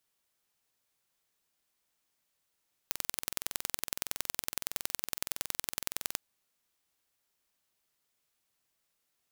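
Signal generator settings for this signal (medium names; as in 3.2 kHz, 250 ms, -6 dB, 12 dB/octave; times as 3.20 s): pulse train 21.6 per s, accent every 2, -3.5 dBFS 3.27 s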